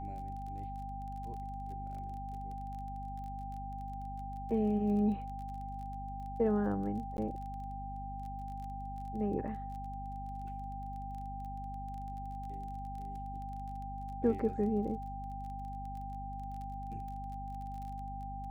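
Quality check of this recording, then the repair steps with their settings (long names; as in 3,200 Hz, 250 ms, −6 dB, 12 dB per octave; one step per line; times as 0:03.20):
surface crackle 22 per second −44 dBFS
mains hum 50 Hz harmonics 5 −44 dBFS
whistle 790 Hz −42 dBFS
0:07.17–0:07.18: drop-out 11 ms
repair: click removal
hum removal 50 Hz, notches 5
notch filter 790 Hz, Q 30
repair the gap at 0:07.17, 11 ms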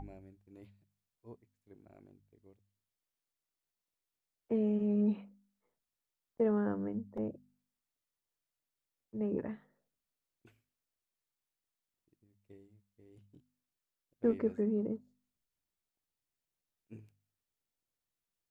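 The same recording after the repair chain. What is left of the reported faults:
none of them is left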